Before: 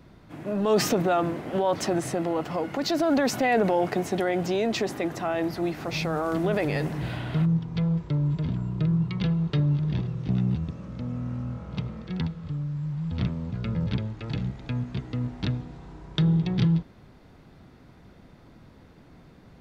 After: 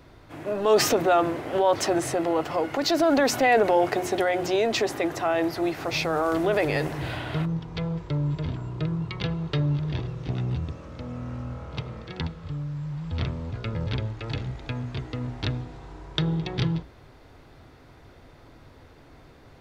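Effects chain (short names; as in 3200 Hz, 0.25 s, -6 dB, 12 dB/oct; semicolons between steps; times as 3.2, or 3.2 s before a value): bell 190 Hz -14.5 dB 0.55 oct; notches 60/120/180/240/300/360 Hz; gain +4 dB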